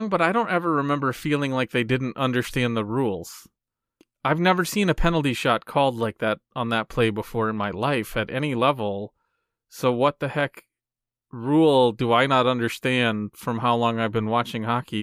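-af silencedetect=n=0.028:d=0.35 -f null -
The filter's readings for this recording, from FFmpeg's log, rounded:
silence_start: 3.35
silence_end: 4.25 | silence_duration: 0.90
silence_start: 9.05
silence_end: 9.77 | silence_duration: 0.71
silence_start: 10.59
silence_end: 11.33 | silence_duration: 0.74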